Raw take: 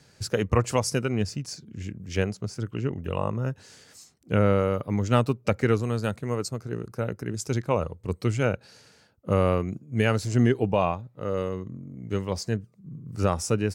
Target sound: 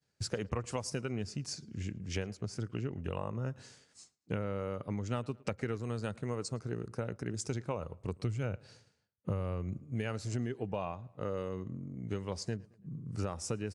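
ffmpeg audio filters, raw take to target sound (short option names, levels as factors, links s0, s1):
-filter_complex "[0:a]agate=range=0.0224:threshold=0.00631:ratio=3:detection=peak,asettb=1/sr,asplit=3[s0][s1][s2];[s0]atrim=end=8.194[s3];[s1]atrim=start=8.19:end=9.83,asetpts=PTS-STARTPTS,afade=t=in:d=0.004:c=qsin,afade=t=out:st=1.636:d=0.004:c=qsin,equalizer=f=94:w=0.76:g=8.5[s4];[s2]atrim=start=9.826[s5];[s3][s4]acrossfade=d=0.004:c1=hsin:c2=qsin[s6];[s6][s5]acrossfade=d=0.004:c1=qsin:c2=hsin,acompressor=threshold=0.0316:ratio=6,asplit=2[s7][s8];[s8]adelay=111,lowpass=f=3800:p=1,volume=0.0668,asplit=2[s9][s10];[s10]adelay=111,lowpass=f=3800:p=1,volume=0.49,asplit=2[s11][s12];[s12]adelay=111,lowpass=f=3800:p=1,volume=0.49[s13];[s7][s9][s11][s13]amix=inputs=4:normalize=0,volume=0.75" -ar 22050 -c:a aac -b:a 96k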